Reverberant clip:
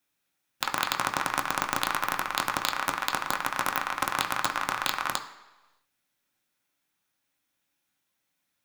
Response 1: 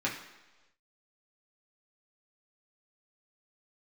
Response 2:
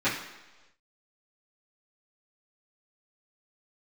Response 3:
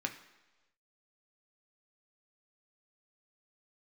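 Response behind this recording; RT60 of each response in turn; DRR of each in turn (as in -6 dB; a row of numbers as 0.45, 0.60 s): 3; not exponential, 1.2 s, not exponential; -5.0, -15.0, 3.5 dB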